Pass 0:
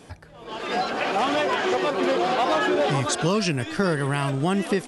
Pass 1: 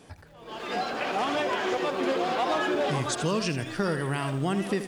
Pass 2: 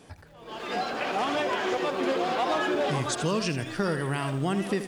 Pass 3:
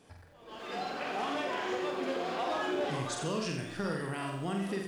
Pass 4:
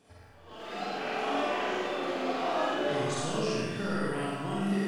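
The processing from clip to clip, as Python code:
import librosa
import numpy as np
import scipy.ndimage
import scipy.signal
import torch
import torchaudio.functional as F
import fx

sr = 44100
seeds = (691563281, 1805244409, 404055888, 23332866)

y1 = fx.echo_crushed(x, sr, ms=81, feedback_pct=35, bits=8, wet_db=-10.5)
y1 = y1 * 10.0 ** (-5.0 / 20.0)
y2 = y1
y3 = fx.room_flutter(y2, sr, wall_m=7.9, rt60_s=0.6)
y3 = y3 * 10.0 ** (-8.5 / 20.0)
y4 = fx.rev_freeverb(y3, sr, rt60_s=1.2, hf_ratio=0.7, predelay_ms=10, drr_db=-5.0)
y4 = y4 * 10.0 ** (-3.0 / 20.0)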